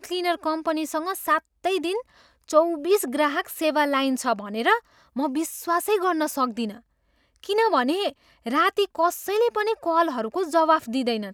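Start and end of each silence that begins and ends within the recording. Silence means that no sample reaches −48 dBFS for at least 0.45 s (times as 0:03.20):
0:06.80–0:07.36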